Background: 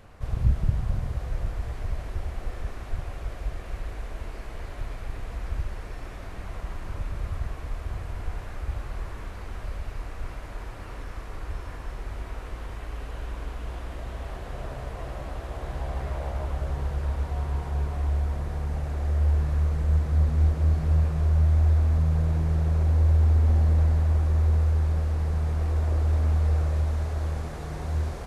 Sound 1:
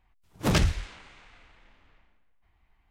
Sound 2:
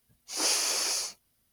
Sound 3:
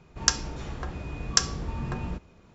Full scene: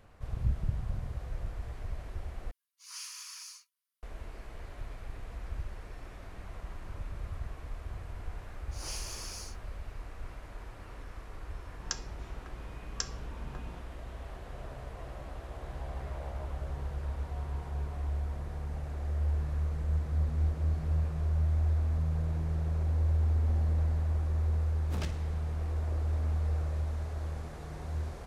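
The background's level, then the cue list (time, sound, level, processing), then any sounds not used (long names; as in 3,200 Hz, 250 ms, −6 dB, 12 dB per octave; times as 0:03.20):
background −8 dB
0:02.51: overwrite with 2 −16.5 dB + linear-phase brick-wall high-pass 930 Hz
0:08.43: mix in 2 −14.5 dB + Butterworth high-pass 290 Hz
0:11.63: mix in 3 −14 dB
0:24.47: mix in 1 −16.5 dB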